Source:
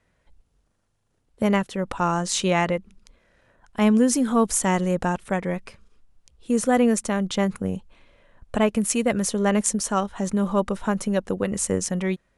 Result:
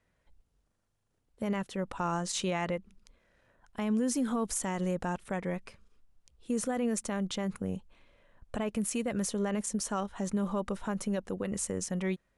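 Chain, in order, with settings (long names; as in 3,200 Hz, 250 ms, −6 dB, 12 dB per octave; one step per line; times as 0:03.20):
brickwall limiter −15.5 dBFS, peak gain reduction 9.5 dB
level −7 dB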